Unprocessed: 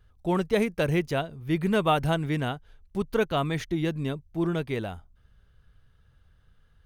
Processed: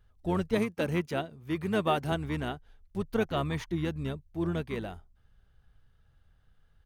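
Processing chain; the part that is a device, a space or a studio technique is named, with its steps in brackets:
octave pedal (pitch-shifted copies added −12 semitones −7 dB)
0:00.58–0:02.12: high-pass filter 140 Hz 12 dB per octave
level −5 dB

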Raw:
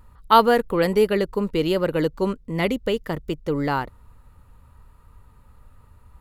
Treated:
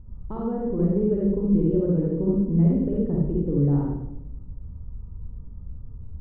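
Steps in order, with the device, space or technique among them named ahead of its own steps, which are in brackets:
television next door (downward compressor 3 to 1, threshold −28 dBFS, peak gain reduction 14.5 dB; low-pass filter 260 Hz 12 dB per octave; convolution reverb RT60 0.80 s, pre-delay 39 ms, DRR −3.5 dB)
level +6.5 dB

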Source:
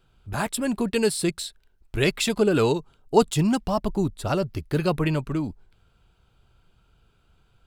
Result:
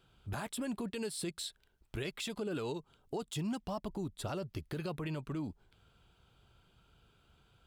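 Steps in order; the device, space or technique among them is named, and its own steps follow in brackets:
broadcast voice chain (high-pass filter 71 Hz 6 dB per octave; de-essing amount 45%; downward compressor 3 to 1, threshold −34 dBFS, peak gain reduction 16.5 dB; parametric band 3,300 Hz +4 dB 0.28 octaves; brickwall limiter −27.5 dBFS, peak gain reduction 7.5 dB)
level −2 dB

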